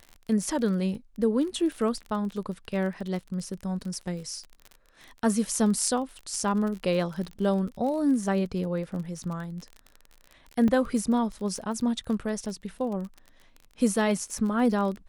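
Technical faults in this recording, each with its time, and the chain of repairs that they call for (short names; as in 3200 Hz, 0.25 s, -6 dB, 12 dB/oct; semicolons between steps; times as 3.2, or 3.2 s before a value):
crackle 34/s -34 dBFS
10.68 gap 3.3 ms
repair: de-click; interpolate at 10.68, 3.3 ms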